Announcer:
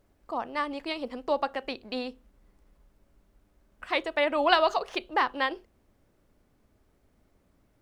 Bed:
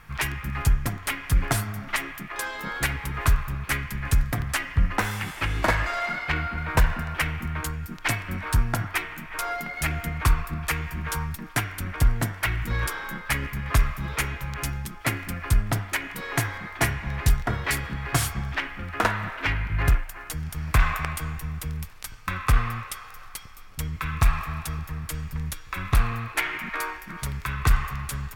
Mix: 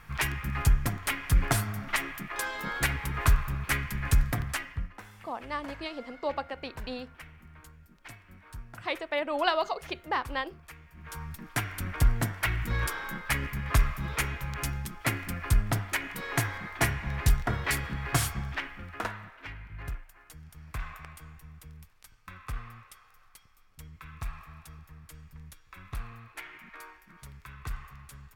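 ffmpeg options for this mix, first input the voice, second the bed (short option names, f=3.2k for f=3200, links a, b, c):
-filter_complex "[0:a]adelay=4950,volume=-4.5dB[a];[1:a]volume=17dB,afade=t=out:st=4.27:d=0.66:silence=0.1,afade=t=in:st=10.92:d=0.84:silence=0.112202,afade=t=out:st=18.18:d=1.13:silence=0.199526[b];[a][b]amix=inputs=2:normalize=0"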